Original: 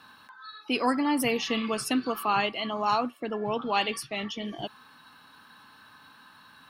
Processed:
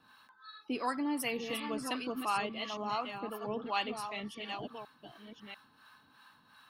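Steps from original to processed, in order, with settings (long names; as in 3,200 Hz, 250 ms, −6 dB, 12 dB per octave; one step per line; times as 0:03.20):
delay that plays each chunk backwards 693 ms, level −7 dB
two-band tremolo in antiphase 2.8 Hz, depth 70%, crossover 620 Hz
level −5.5 dB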